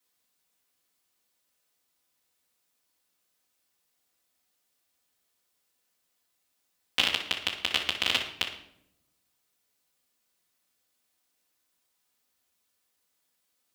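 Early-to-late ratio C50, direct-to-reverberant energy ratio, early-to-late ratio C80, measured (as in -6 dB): 6.5 dB, -4.5 dB, 10.5 dB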